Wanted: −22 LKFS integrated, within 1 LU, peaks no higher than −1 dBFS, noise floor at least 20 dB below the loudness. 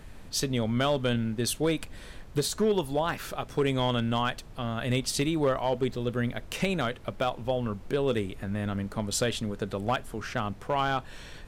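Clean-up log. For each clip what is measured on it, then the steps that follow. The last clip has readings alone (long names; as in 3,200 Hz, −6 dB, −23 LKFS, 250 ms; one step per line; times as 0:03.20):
share of clipped samples 0.4%; peaks flattened at −18.5 dBFS; background noise floor −46 dBFS; target noise floor −50 dBFS; integrated loudness −29.5 LKFS; sample peak −18.5 dBFS; target loudness −22.0 LKFS
→ clipped peaks rebuilt −18.5 dBFS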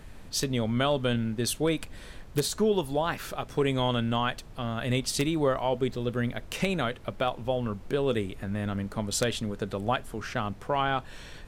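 share of clipped samples 0.0%; background noise floor −46 dBFS; target noise floor −50 dBFS
→ noise reduction from a noise print 6 dB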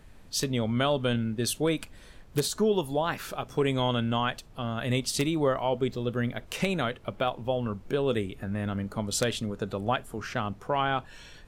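background noise floor −51 dBFS; integrated loudness −29.5 LKFS; sample peak −9.5 dBFS; target loudness −22.0 LKFS
→ level +7.5 dB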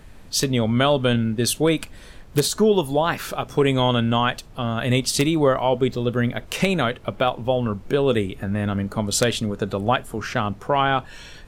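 integrated loudness −22.0 LKFS; sample peak −2.0 dBFS; background noise floor −43 dBFS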